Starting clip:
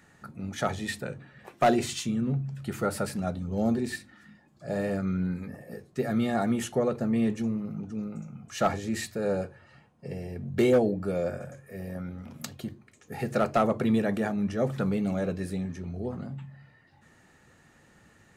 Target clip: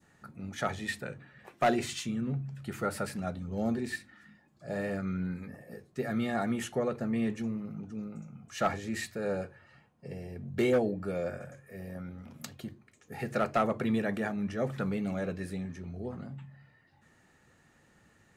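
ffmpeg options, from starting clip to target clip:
ffmpeg -i in.wav -af "adynamicequalizer=threshold=0.00447:dfrequency=1900:dqfactor=1:tfrequency=1900:tqfactor=1:attack=5:release=100:ratio=0.375:range=2.5:mode=boostabove:tftype=bell,volume=-5dB" out.wav

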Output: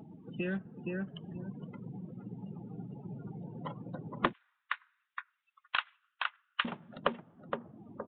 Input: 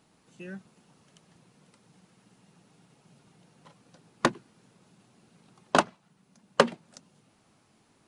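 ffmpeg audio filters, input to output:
ffmpeg -i in.wav -filter_complex "[0:a]acompressor=mode=upward:threshold=-58dB:ratio=2.5,asplit=2[link_01][link_02];[link_02]adelay=467,lowpass=frequency=2400:poles=1,volume=-6dB,asplit=2[link_03][link_04];[link_04]adelay=467,lowpass=frequency=2400:poles=1,volume=0.18,asplit=2[link_05][link_06];[link_06]adelay=467,lowpass=frequency=2400:poles=1,volume=0.18[link_07];[link_01][link_03][link_05][link_07]amix=inputs=4:normalize=0,acrusher=bits=3:mode=log:mix=0:aa=0.000001,asettb=1/sr,asplit=3[link_08][link_09][link_10];[link_08]atrim=end=4.334[link_11];[link_09]atrim=start=4.33:end=6.65,asetpts=PTS-STARTPTS,afade=type=in:duration=0.004:curve=qsin,afade=type=out:start_time=2.316:duration=0.004:curve=qsin,highpass=frequency=1400:width=0.5412,highpass=frequency=1400:width=1.3066[link_12];[link_10]atrim=start=6.646[link_13];[link_11][link_12]acrossfade=duration=0.004:curve1=hsin:curve2=qsin[link_14];[link_14][link_13]acrossfade=duration=0.004:curve1=qsin:curve2=hsin,afftdn=noise_reduction=34:noise_floor=-56,acompressor=threshold=-52dB:ratio=3,aresample=8000,aresample=44100,volume=16.5dB" out.wav

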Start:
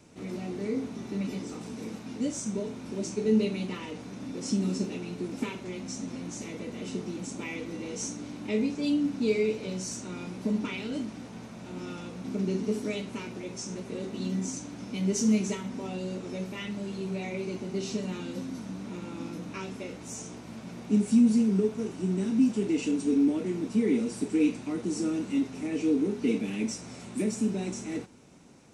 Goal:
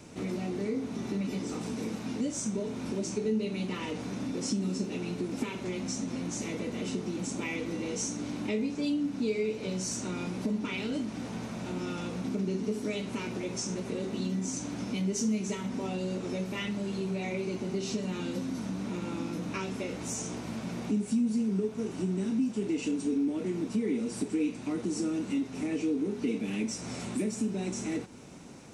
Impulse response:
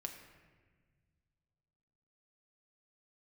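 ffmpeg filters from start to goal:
-af "acompressor=threshold=-39dB:ratio=2.5,volume=6.5dB"

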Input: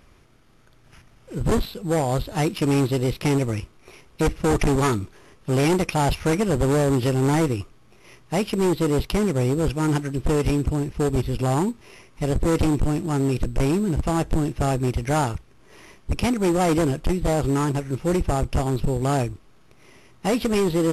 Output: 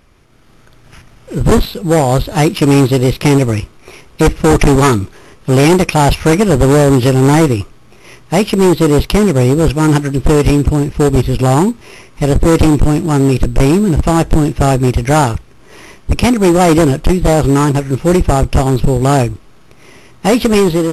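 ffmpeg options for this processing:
ffmpeg -i in.wav -af "dynaudnorm=framelen=140:gausssize=5:maxgain=8dB,volume=3.5dB" out.wav

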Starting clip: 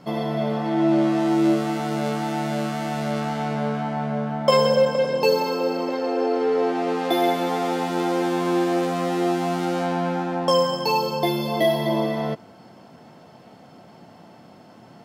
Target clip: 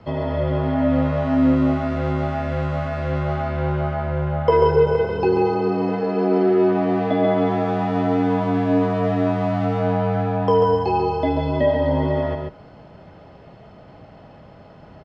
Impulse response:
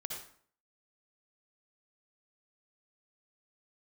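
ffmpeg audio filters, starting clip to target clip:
-filter_complex "[0:a]lowpass=3200,acrossover=split=2000[link_01][link_02];[link_02]acompressor=threshold=-47dB:ratio=5[link_03];[link_01][link_03]amix=inputs=2:normalize=0,afreqshift=-68,aecho=1:1:140:0.631,volume=1.5dB"

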